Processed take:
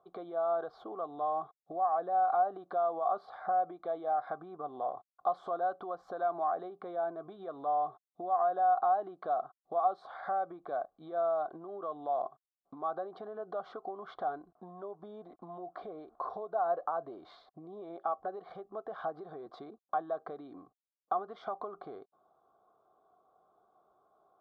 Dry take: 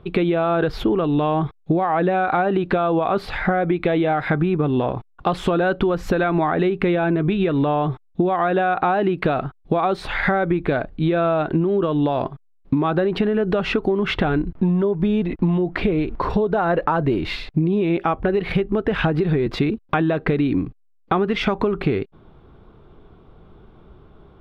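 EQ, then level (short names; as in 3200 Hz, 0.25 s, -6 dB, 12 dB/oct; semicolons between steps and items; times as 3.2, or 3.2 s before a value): vowel filter a; Butterworth band-stop 2600 Hz, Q 1.4; low shelf 280 Hz -8.5 dB; -3.5 dB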